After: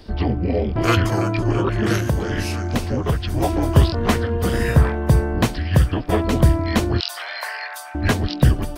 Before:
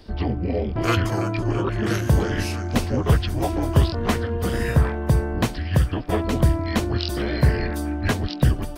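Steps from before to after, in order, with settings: 2–3.34 compressor 3:1, threshold -22 dBFS, peak gain reduction 8.5 dB; 7–7.95 steep high-pass 730 Hz 36 dB/oct; gain +3.5 dB

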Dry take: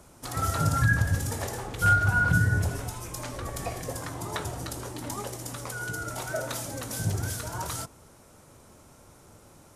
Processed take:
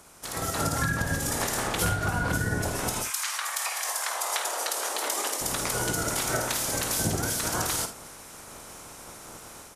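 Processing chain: spectral limiter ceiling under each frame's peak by 16 dB; compressor 8:1, threshold -33 dBFS, peak gain reduction 17 dB; 3.02–5.4 HPF 1200 Hz -> 310 Hz 24 dB/oct; early reflections 51 ms -9.5 dB, 78 ms -16.5 dB; AGC gain up to 8.5 dB

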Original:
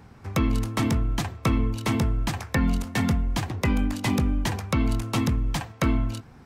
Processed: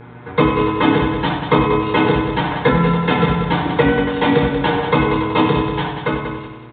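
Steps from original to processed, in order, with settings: ending faded out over 1.21 s; speed mistake 25 fps video run at 24 fps; notches 50/100/150 Hz; comb 6.7 ms, depth 56%; multi-head echo 94 ms, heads first and second, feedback 48%, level -10 dB; reverb RT60 0.55 s, pre-delay 3 ms, DRR -13 dB; downsampling 8000 Hz; low shelf 150 Hz -11 dB; buzz 120 Hz, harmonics 21, -37 dBFS -6 dB/oct; dynamic EQ 530 Hz, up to +3 dB, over -27 dBFS, Q 0.91; gain -3.5 dB

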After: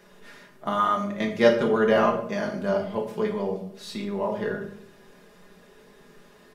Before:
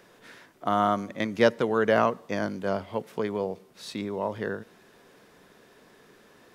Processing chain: low shelf 73 Hz +8 dB; comb 4.9 ms, depth 68%; shoebox room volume 100 m³, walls mixed, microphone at 0.74 m; gain -2.5 dB

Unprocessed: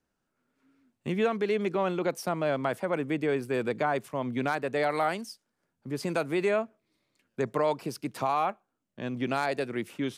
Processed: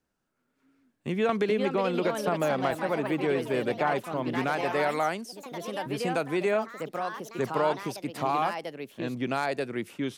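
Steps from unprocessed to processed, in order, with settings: echoes that change speed 0.591 s, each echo +3 st, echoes 3, each echo -6 dB; 1.29–2.71 three-band squash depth 100%

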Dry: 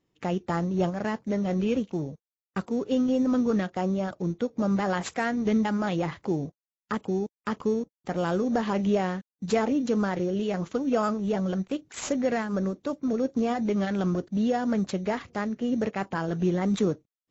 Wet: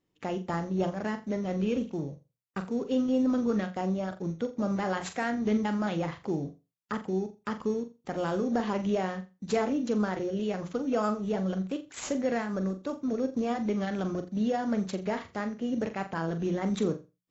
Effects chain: notches 60/120/180 Hz; flutter echo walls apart 7.3 m, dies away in 0.27 s; gain -3.5 dB

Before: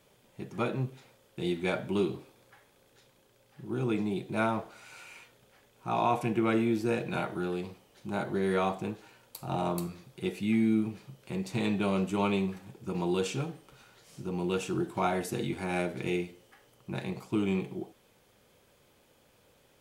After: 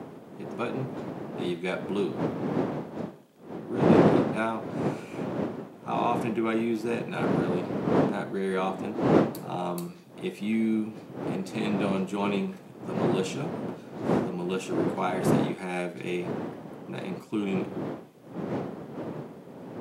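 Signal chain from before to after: wind noise 380 Hz -29 dBFS; HPF 140 Hz 24 dB/oct

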